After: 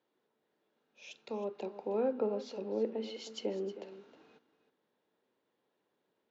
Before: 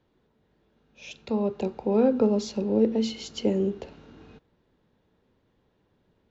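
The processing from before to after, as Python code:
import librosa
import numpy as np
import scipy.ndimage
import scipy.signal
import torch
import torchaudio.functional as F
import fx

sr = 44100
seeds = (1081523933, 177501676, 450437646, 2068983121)

p1 = fx.env_lowpass_down(x, sr, base_hz=2900.0, full_db=-21.0)
p2 = scipy.signal.sosfilt(scipy.signal.butter(2, 350.0, 'highpass', fs=sr, output='sos'), p1)
p3 = p2 + fx.echo_single(p2, sr, ms=315, db=-14.0, dry=0)
y = F.gain(torch.from_numpy(p3), -8.0).numpy()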